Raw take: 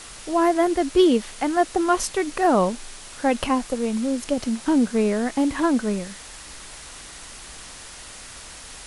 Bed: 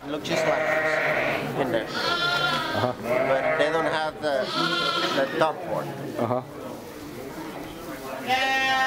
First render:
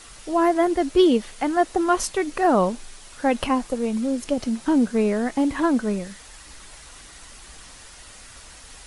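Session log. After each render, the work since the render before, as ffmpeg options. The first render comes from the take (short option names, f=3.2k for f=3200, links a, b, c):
-af "afftdn=nr=6:nf=-41"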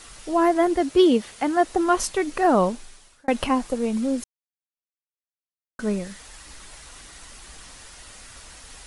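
-filter_complex "[0:a]asettb=1/sr,asplit=3[a][b][c];[a]atrim=end=0.804[d];[b]atrim=start=0.8:end=1.65,asetpts=PTS-STARTPTS,afade=t=in:d=0.004:c=qsin,afade=t=out:st=0.846:d=0.004:c=qsin,highpass=54[e];[c]atrim=start=1.646[f];[d][e]acrossfade=d=0.004:c1=hsin:c2=qsin[g];[g][f]acrossfade=d=0.004:c1=qsin:c2=hsin,asplit=4[h][i][j][k];[h]atrim=end=3.28,asetpts=PTS-STARTPTS,afade=t=out:st=2.66:d=0.62[l];[i]atrim=start=3.28:end=4.24,asetpts=PTS-STARTPTS,afade=t=in:d=0.004:c=hsin,afade=t=out:st=0.956:d=0.004:c=hsin[m];[j]atrim=start=4.24:end=5.79,asetpts=PTS-STARTPTS,volume=0[n];[k]atrim=start=5.79,asetpts=PTS-STARTPTS,afade=t=in:d=0.004:c=hsin[o];[l][m][n][o]concat=n=4:v=0:a=1"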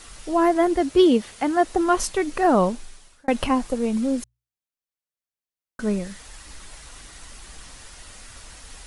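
-af "lowshelf=f=140:g=5,bandreject=f=60:t=h:w=6,bandreject=f=120:t=h:w=6"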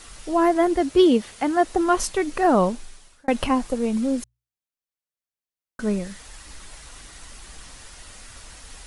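-af anull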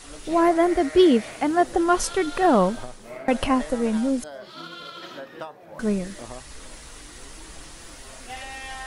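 -filter_complex "[1:a]volume=-14.5dB[a];[0:a][a]amix=inputs=2:normalize=0"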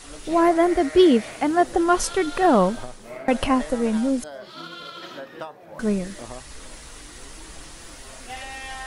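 -af "volume=1dB"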